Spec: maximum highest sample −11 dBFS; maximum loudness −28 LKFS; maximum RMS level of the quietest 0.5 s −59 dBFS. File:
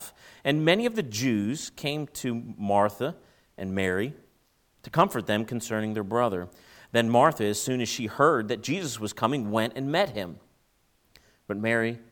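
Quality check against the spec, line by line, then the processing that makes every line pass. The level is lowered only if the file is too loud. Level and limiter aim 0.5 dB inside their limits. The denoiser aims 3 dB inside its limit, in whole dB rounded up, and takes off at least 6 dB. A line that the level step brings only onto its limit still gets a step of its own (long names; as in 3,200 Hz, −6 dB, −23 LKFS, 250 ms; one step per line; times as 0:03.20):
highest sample −6.0 dBFS: out of spec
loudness −27.0 LKFS: out of spec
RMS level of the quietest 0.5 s −68 dBFS: in spec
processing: level −1.5 dB
brickwall limiter −11.5 dBFS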